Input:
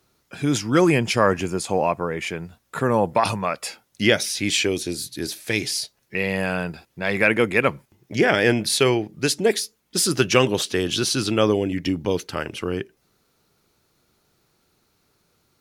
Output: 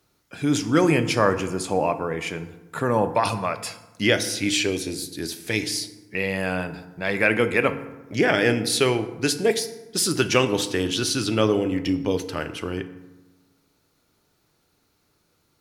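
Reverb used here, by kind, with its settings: FDN reverb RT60 1.1 s, low-frequency decay 1.25×, high-frequency decay 0.55×, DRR 9 dB; gain -2 dB

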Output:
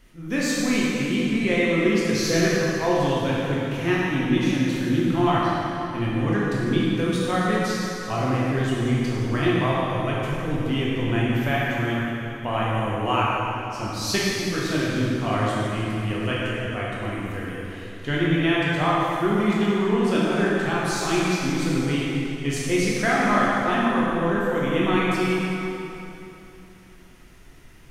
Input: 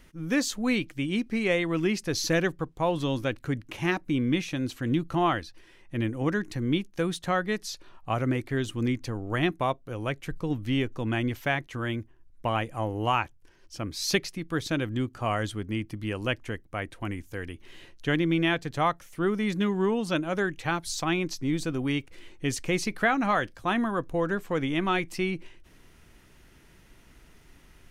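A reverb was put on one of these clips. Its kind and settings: plate-style reverb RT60 3.1 s, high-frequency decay 0.8×, DRR -7 dB; gain -2.5 dB

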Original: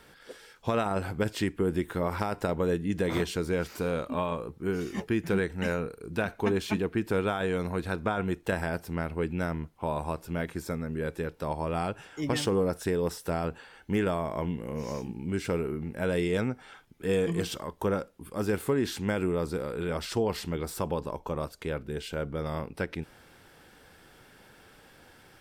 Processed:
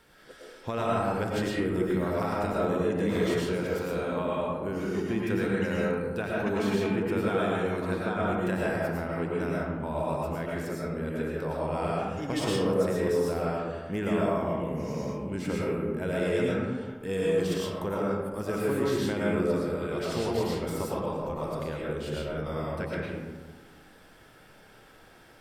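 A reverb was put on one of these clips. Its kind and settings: digital reverb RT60 1.4 s, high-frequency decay 0.4×, pre-delay 70 ms, DRR -5 dB; gain -5 dB

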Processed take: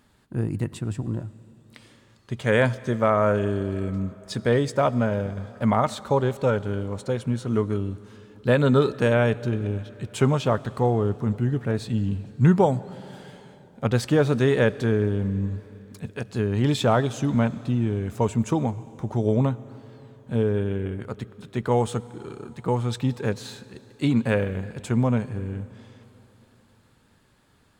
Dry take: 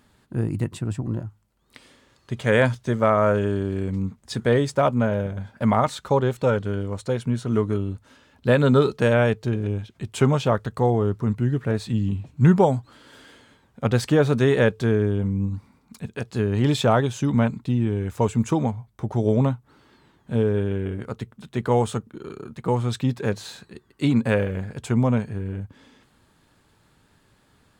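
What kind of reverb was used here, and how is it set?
digital reverb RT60 3.7 s, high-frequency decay 1×, pre-delay 40 ms, DRR 18 dB; gain -1.5 dB

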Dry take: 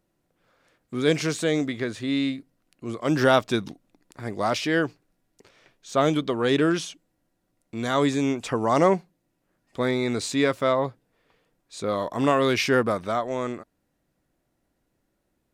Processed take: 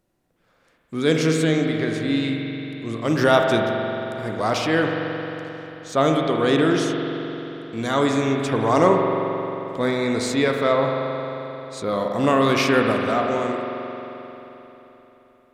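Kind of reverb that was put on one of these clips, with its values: spring tank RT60 3.7 s, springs 44 ms, chirp 40 ms, DRR 1.5 dB; gain +1.5 dB

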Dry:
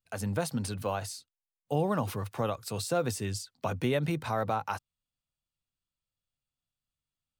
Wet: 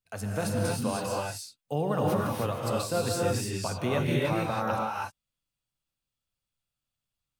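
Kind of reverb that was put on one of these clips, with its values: non-linear reverb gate 0.34 s rising, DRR -3.5 dB; gain -1.5 dB

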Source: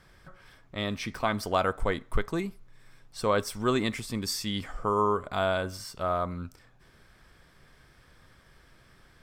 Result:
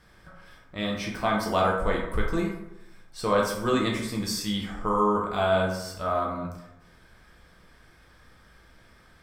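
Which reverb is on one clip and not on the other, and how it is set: plate-style reverb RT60 0.88 s, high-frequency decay 0.5×, DRR -2 dB; gain -1.5 dB

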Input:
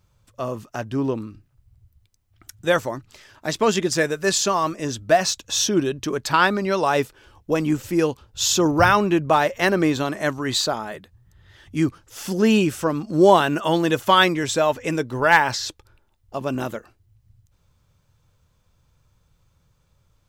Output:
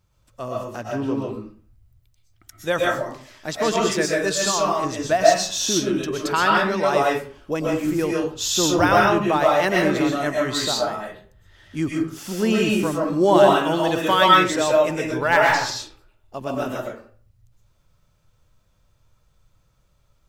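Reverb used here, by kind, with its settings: digital reverb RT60 0.46 s, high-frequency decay 0.65×, pre-delay 85 ms, DRR -3 dB; gain -4 dB

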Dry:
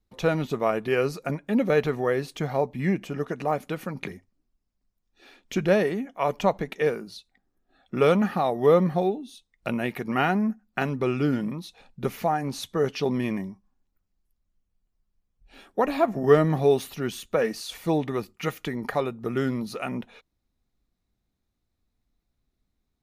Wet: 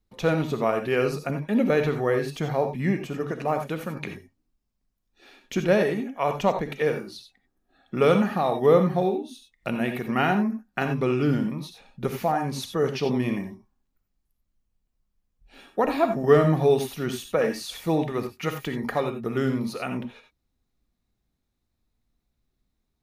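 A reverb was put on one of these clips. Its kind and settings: non-linear reverb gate 0.11 s rising, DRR 6.5 dB

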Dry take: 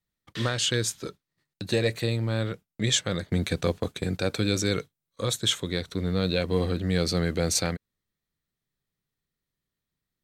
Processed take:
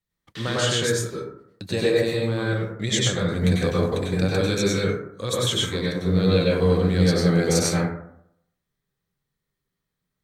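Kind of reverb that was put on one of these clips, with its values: plate-style reverb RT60 0.72 s, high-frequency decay 0.35×, pre-delay 85 ms, DRR -5.5 dB; gain -1.5 dB

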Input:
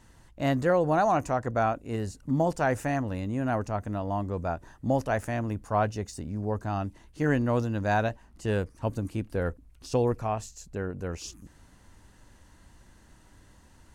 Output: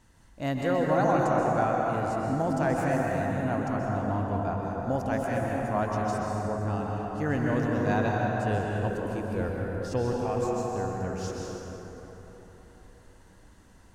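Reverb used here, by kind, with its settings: plate-style reverb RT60 4.2 s, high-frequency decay 0.45×, pre-delay 0.115 s, DRR -2.5 dB; gain -4 dB

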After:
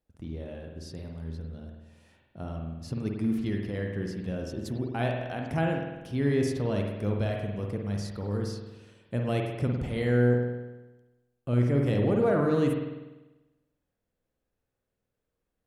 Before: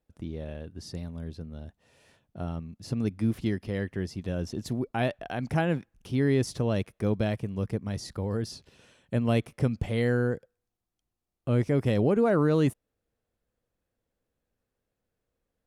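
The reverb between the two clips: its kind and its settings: spring tank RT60 1.1 s, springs 49 ms, chirp 55 ms, DRR 1 dB; gain -3.5 dB

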